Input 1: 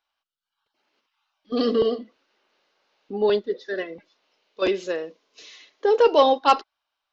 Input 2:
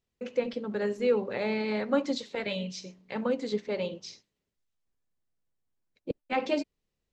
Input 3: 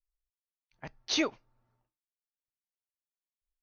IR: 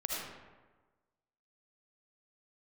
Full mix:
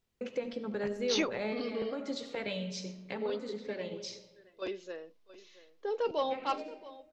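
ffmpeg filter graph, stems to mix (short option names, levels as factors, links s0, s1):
-filter_complex "[0:a]volume=0.168,asplit=3[s0][s1][s2];[s1]volume=0.126[s3];[1:a]acompressor=threshold=0.00891:ratio=2,volume=1.12,asplit=2[s4][s5];[s5]volume=0.224[s6];[2:a]volume=0.75[s7];[s2]apad=whole_len=314257[s8];[s4][s8]sidechaincompress=threshold=0.00631:ratio=8:attack=8.5:release=223[s9];[3:a]atrim=start_sample=2205[s10];[s6][s10]afir=irnorm=-1:irlink=0[s11];[s3]aecho=0:1:675:1[s12];[s0][s9][s7][s11][s12]amix=inputs=5:normalize=0"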